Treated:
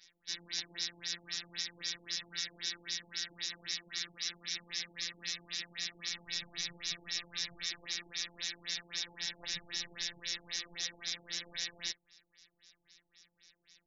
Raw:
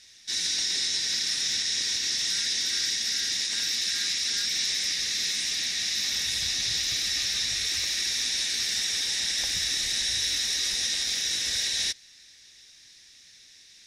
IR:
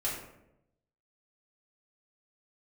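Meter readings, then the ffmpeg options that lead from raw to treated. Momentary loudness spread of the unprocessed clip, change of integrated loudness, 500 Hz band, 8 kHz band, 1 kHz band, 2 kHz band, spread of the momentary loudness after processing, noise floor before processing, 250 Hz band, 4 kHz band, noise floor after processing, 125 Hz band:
1 LU, -13.5 dB, -8.0 dB, -15.5 dB, -8.0 dB, -10.5 dB, 3 LU, -53 dBFS, -8.0 dB, -13.0 dB, -81 dBFS, -10.0 dB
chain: -filter_complex "[0:a]asplit=2[a][b];[1:a]atrim=start_sample=2205,atrim=end_sample=3528[c];[b][c]afir=irnorm=-1:irlink=0,volume=-20.5dB[d];[a][d]amix=inputs=2:normalize=0,afftfilt=real='hypot(re,im)*cos(PI*b)':imag='0':win_size=1024:overlap=0.75,afftfilt=real='re*lt(b*sr/1024,880*pow(7600/880,0.5+0.5*sin(2*PI*3.8*pts/sr)))':imag='im*lt(b*sr/1024,880*pow(7600/880,0.5+0.5*sin(2*PI*3.8*pts/sr)))':win_size=1024:overlap=0.75,volume=-5dB"

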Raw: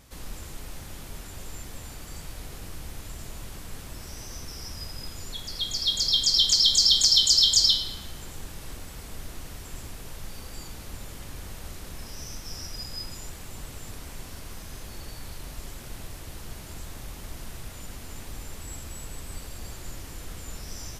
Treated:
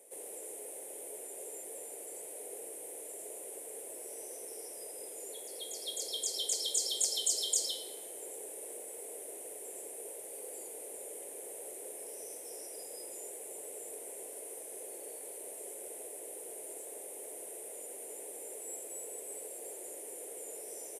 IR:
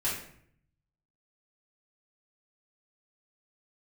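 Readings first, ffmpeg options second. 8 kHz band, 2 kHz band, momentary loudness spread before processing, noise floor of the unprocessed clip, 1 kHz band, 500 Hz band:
-4.5 dB, -13.0 dB, 23 LU, -42 dBFS, -8.0 dB, +3.5 dB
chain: -filter_complex "[0:a]firequalizer=gain_entry='entry(140,0);entry(200,-10);entry(430,10);entry(1200,-22);entry(2100,-10);entry(4700,-22);entry(9300,10);entry(14000,-6)':delay=0.05:min_phase=1,acrossover=split=350|600|3500[a][b][c][d];[a]acrusher=bits=2:mix=0:aa=0.5[e];[e][b][c][d]amix=inputs=4:normalize=0"

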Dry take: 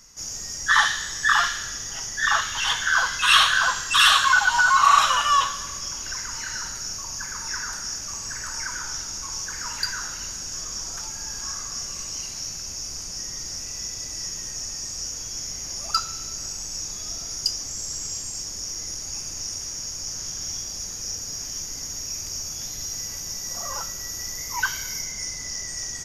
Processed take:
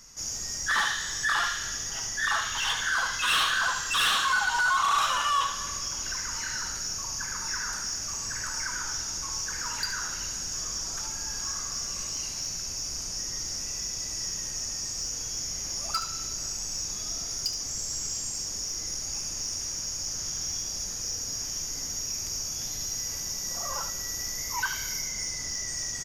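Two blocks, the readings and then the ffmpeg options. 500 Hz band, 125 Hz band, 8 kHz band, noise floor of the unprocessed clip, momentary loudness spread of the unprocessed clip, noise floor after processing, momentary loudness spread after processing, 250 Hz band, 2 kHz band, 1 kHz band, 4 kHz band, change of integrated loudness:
-2.5 dB, -1.5 dB, -1.5 dB, -34 dBFS, 13 LU, -35 dBFS, 7 LU, -1.0 dB, -6.0 dB, -7.0 dB, -5.0 dB, -4.5 dB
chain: -filter_complex "[0:a]asplit=2[a][b];[b]acompressor=threshold=-29dB:ratio=6,volume=-2dB[c];[a][c]amix=inputs=2:normalize=0,asoftclip=type=tanh:threshold=-15dB,aecho=1:1:73:0.355,volume=-5.5dB"

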